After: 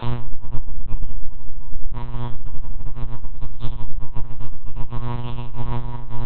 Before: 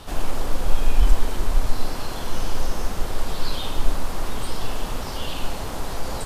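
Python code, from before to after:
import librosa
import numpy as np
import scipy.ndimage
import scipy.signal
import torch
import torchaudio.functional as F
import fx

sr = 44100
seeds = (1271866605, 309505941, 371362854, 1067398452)

p1 = fx.gate_flip(x, sr, shuts_db=-14.0, range_db=-27)
p2 = fx.peak_eq(p1, sr, hz=960.0, db=7.5, octaves=0.29)
p3 = fx.over_compress(p2, sr, threshold_db=-36.0, ratio=-1.0)
p4 = fx.chorus_voices(p3, sr, voices=4, hz=0.48, base_ms=29, depth_ms=2.8, mix_pct=50)
p5 = p4 + fx.echo_single(p4, sr, ms=141, db=-22.5, dry=0)
p6 = fx.room_shoebox(p5, sr, seeds[0], volume_m3=170.0, walls='furnished', distance_m=5.3)
p7 = fx.lpc_monotone(p6, sr, seeds[1], pitch_hz=120.0, order=8)
y = p7 * 10.0 ** (-1.0 / 20.0)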